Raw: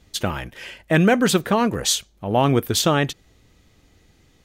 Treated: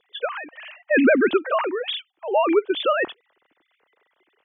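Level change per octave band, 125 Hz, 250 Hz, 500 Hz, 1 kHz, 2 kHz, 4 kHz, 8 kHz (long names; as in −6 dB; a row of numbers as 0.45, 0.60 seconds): below −30 dB, −3.0 dB, +1.5 dB, −2.0 dB, +2.0 dB, −6.0 dB, below −40 dB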